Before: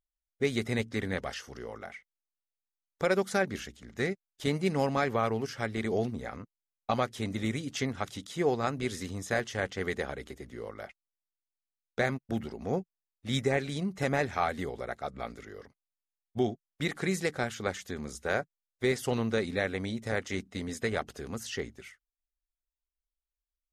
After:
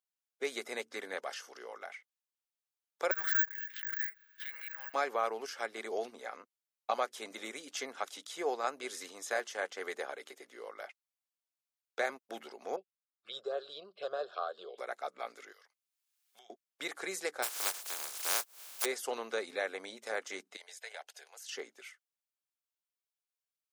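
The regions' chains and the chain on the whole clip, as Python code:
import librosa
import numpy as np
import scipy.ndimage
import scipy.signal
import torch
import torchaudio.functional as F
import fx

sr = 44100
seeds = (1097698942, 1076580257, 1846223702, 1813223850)

y = fx.chain(x, sr, fx.ladder_bandpass(hz=1700.0, resonance_pct=90),
    fx.resample_bad(factor=2, down='none', up='zero_stuff'),
    fx.pre_swell(db_per_s=45.0), at=(3.11, 4.94))
y = fx.chain(y, sr, fx.lowpass(hz=6500.0, slope=24),
    fx.env_phaser(low_hz=440.0, high_hz=2300.0, full_db=-28.0),
    fx.fixed_phaser(hz=1300.0, stages=8), at=(12.76, 14.78))
y = fx.chain(y, sr, fx.tone_stack(knobs='10-0-10'),
    fx.band_squash(depth_pct=100), at=(15.52, 16.5))
y = fx.spec_flatten(y, sr, power=0.13, at=(17.42, 18.84), fade=0.02)
y = fx.pre_swell(y, sr, db_per_s=100.0, at=(17.42, 18.84), fade=0.02)
y = fx.chain(y, sr, fx.highpass(hz=630.0, slope=24),
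    fx.level_steps(step_db=10),
    fx.peak_eq(hz=1200.0, db=-12.0, octaves=0.39), at=(20.56, 21.49))
y = scipy.signal.sosfilt(scipy.signal.bessel(4, 620.0, 'highpass', norm='mag', fs=sr, output='sos'), y)
y = fx.dynamic_eq(y, sr, hz=3000.0, q=0.79, threshold_db=-45.0, ratio=4.0, max_db=-5)
y = fx.notch(y, sr, hz=1900.0, q=15.0)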